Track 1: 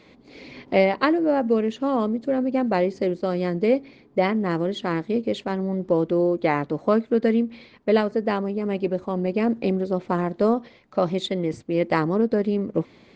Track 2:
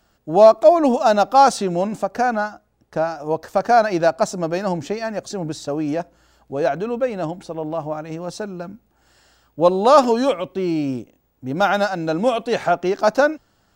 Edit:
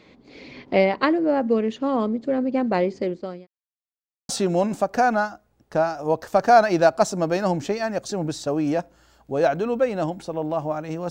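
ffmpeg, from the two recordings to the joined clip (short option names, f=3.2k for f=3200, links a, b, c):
-filter_complex "[0:a]apad=whole_dur=11.1,atrim=end=11.1,asplit=2[a][b];[a]atrim=end=3.47,asetpts=PTS-STARTPTS,afade=t=out:st=2.76:d=0.71:c=qsin[c];[b]atrim=start=3.47:end=4.29,asetpts=PTS-STARTPTS,volume=0[d];[1:a]atrim=start=1.5:end=8.31,asetpts=PTS-STARTPTS,afade=t=in:d=0.004:c=hsin[e];[c][d][e]concat=n=3:v=0:a=1"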